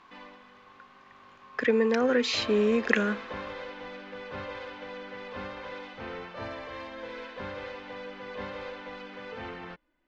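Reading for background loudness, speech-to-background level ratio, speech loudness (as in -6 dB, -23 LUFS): -40.0 LUFS, 14.0 dB, -26.0 LUFS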